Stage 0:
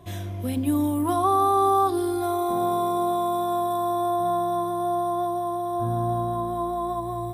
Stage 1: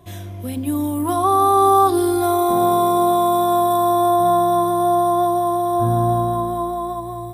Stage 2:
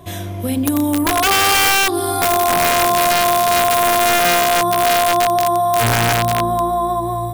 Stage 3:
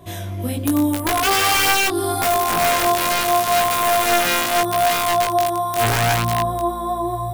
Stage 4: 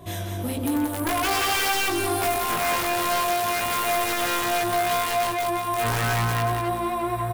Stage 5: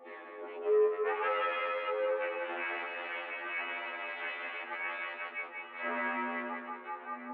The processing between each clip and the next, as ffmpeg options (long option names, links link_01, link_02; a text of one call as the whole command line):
ffmpeg -i in.wav -af "highshelf=frequency=7600:gain=4.5,dynaudnorm=framelen=290:gausssize=9:maxgain=8.5dB" out.wav
ffmpeg -i in.wav -af "bandreject=frequency=50:width_type=h:width=6,bandreject=frequency=100:width_type=h:width=6,bandreject=frequency=150:width_type=h:width=6,bandreject=frequency=200:width_type=h:width=6,bandreject=frequency=250:width_type=h:width=6,bandreject=frequency=300:width_type=h:width=6,bandreject=frequency=350:width_type=h:width=6,bandreject=frequency=400:width_type=h:width=6,bandreject=frequency=450:width_type=h:width=6,acompressor=threshold=-24dB:ratio=2.5,aeval=exprs='(mod(7.94*val(0)+1,2)-1)/7.94':channel_layout=same,volume=9dB" out.wav
ffmpeg -i in.wav -af "flanger=delay=18:depth=2.9:speed=0.8" out.wav
ffmpeg -i in.wav -filter_complex "[0:a]asoftclip=type=tanh:threshold=-22dB,asplit=2[link_01][link_02];[link_02]aecho=0:1:181|362|543|724:0.531|0.159|0.0478|0.0143[link_03];[link_01][link_03]amix=inputs=2:normalize=0" out.wav
ffmpeg -i in.wav -af "highpass=frequency=160:width_type=q:width=0.5412,highpass=frequency=160:width_type=q:width=1.307,lowpass=frequency=2300:width_type=q:width=0.5176,lowpass=frequency=2300:width_type=q:width=0.7071,lowpass=frequency=2300:width_type=q:width=1.932,afreqshift=130,afftfilt=real='re*2*eq(mod(b,4),0)':imag='im*2*eq(mod(b,4),0)':win_size=2048:overlap=0.75,volume=-4.5dB" out.wav